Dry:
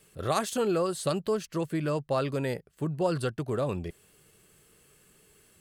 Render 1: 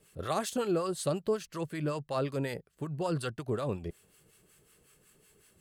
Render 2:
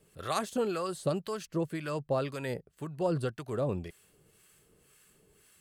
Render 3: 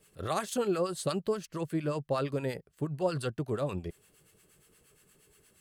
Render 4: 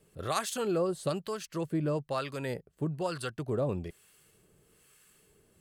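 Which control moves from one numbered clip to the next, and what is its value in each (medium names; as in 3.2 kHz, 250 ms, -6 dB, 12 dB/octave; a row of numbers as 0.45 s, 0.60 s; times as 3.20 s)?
harmonic tremolo, rate: 5.4 Hz, 1.9 Hz, 8.5 Hz, 1.1 Hz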